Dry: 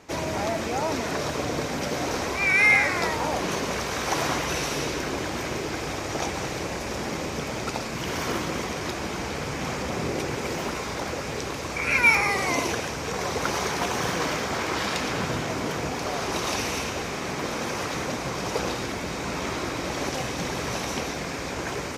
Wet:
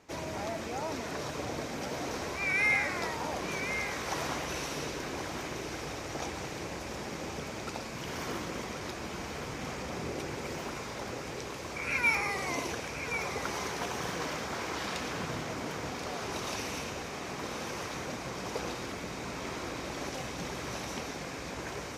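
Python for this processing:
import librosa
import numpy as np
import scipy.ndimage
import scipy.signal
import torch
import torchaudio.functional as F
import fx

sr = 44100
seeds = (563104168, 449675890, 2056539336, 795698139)

p1 = x + fx.echo_single(x, sr, ms=1075, db=-9.0, dry=0)
y = F.gain(torch.from_numpy(p1), -9.0).numpy()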